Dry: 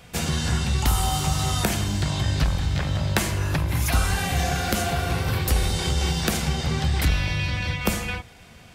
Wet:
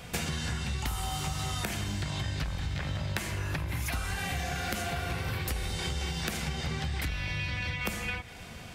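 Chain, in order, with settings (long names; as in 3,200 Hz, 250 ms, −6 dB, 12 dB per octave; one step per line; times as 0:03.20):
dynamic equaliser 2,100 Hz, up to +5 dB, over −45 dBFS, Q 1.2
downward compressor 6 to 1, threshold −34 dBFS, peak gain reduction 17.5 dB
level +3 dB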